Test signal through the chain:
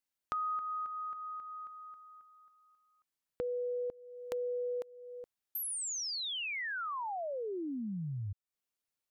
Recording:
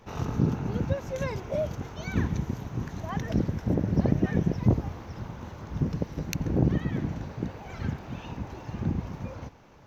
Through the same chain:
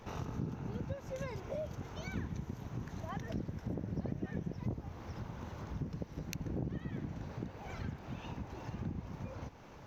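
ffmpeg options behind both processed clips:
-af "acompressor=threshold=0.00631:ratio=2.5,volume=1.12"

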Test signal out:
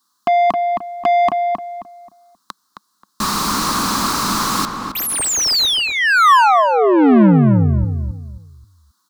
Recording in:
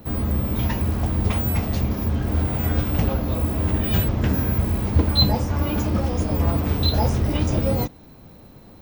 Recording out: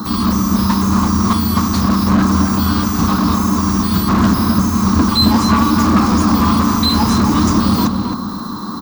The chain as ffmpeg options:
-filter_complex "[0:a]acontrast=84,firequalizer=gain_entry='entry(140,0);entry(200,12);entry(310,5);entry(550,-18);entry(1100,13);entry(2300,-22);entry(4000,9)':delay=0.05:min_phase=1,asplit=2[s0][s1];[s1]highpass=f=720:p=1,volume=22.4,asoftclip=type=tanh:threshold=0.708[s2];[s0][s2]amix=inputs=2:normalize=0,lowpass=f=2200:p=1,volume=0.501,asplit=2[s3][s4];[s4]adelay=266,lowpass=f=1700:p=1,volume=0.631,asplit=2[s5][s6];[s6]adelay=266,lowpass=f=1700:p=1,volume=0.31,asplit=2[s7][s8];[s8]adelay=266,lowpass=f=1700:p=1,volume=0.31,asplit=2[s9][s10];[s10]adelay=266,lowpass=f=1700:p=1,volume=0.31[s11];[s5][s7][s9][s11]amix=inputs=4:normalize=0[s12];[s3][s12]amix=inputs=2:normalize=0,volume=0.708"

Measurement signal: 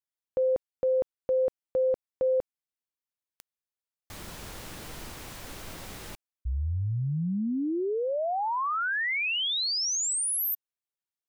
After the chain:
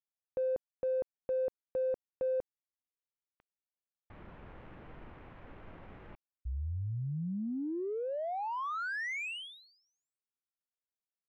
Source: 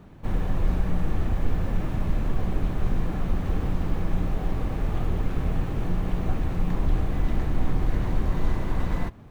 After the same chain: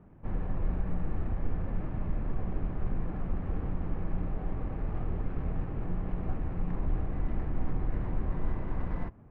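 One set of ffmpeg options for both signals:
-af "lowpass=f=2900:w=0.5412,lowpass=f=2900:w=1.3066,adynamicsmooth=sensitivity=3:basefreq=2000,volume=0.447"

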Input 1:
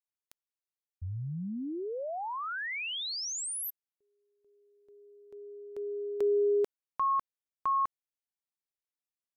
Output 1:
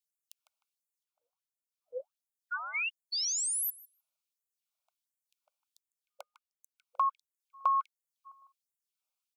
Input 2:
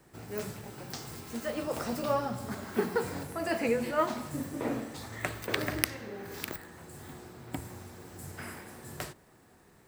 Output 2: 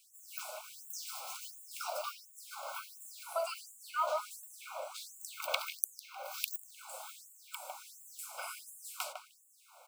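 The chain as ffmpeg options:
-filter_complex "[0:a]lowshelf=f=370:g=10.5,acompressor=threshold=0.0158:ratio=2:attack=45:release=707:knee=1:detection=peak,asuperstop=centerf=1800:order=20:qfactor=2.8,asplit=2[s0][s1];[s1]adelay=153,lowpass=f=2100:p=1,volume=0.447,asplit=2[s2][s3];[s3]adelay=153,lowpass=f=2100:p=1,volume=0.42,asplit=2[s4][s5];[s5]adelay=153,lowpass=f=2100:p=1,volume=0.42,asplit=2[s6][s7];[s7]adelay=153,lowpass=f=2100:p=1,volume=0.42,asplit=2[s8][s9];[s9]adelay=153,lowpass=f=2100:p=1,volume=0.42[s10];[s2][s4][s6][s8][s10]amix=inputs=5:normalize=0[s11];[s0][s11]amix=inputs=2:normalize=0,afftfilt=real='re*gte(b*sr/1024,500*pow(6800/500,0.5+0.5*sin(2*PI*1.4*pts/sr)))':imag='im*gte(b*sr/1024,500*pow(6800/500,0.5+0.5*sin(2*PI*1.4*pts/sr)))':win_size=1024:overlap=0.75,volume=1.78"

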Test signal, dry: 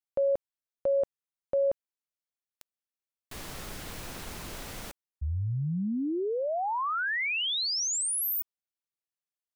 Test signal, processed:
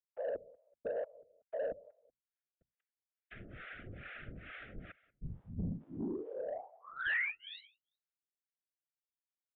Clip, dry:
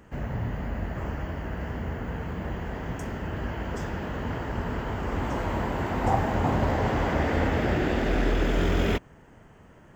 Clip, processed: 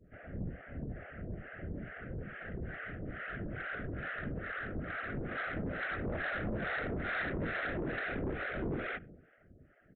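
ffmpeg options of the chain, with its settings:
-filter_complex "[0:a]bandreject=f=60:t=h:w=6,bandreject=f=120:t=h:w=6,bandreject=f=180:t=h:w=6,acrossover=split=130|1100[s0][s1][s2];[s0]alimiter=level_in=2.11:limit=0.0631:level=0:latency=1,volume=0.473[s3];[s2]dynaudnorm=f=200:g=21:m=3.16[s4];[s3][s1][s4]amix=inputs=3:normalize=0,lowpass=f=2200:w=0.5412,lowpass=f=2200:w=1.3066,adynamicequalizer=threshold=0.0126:dfrequency=1100:dqfactor=1.2:tfrequency=1100:tqfactor=1.2:attack=5:release=100:ratio=0.375:range=3:mode=boostabove:tftype=bell,asuperstop=centerf=950:order=8:qfactor=1.5,aecho=1:1:189|378:0.0708|0.0177,afftfilt=real='hypot(re,im)*cos(2*PI*random(0))':imag='hypot(re,im)*sin(2*PI*random(1))':win_size=512:overlap=0.75,lowshelf=f=150:g=2.5,acrossover=split=600[s5][s6];[s5]aeval=exprs='val(0)*(1-1/2+1/2*cos(2*PI*2.3*n/s))':c=same[s7];[s6]aeval=exprs='val(0)*(1-1/2-1/2*cos(2*PI*2.3*n/s))':c=same[s8];[s7][s8]amix=inputs=2:normalize=0,aresample=8000,asoftclip=type=tanh:threshold=0.0266,aresample=44100,volume=1.12"

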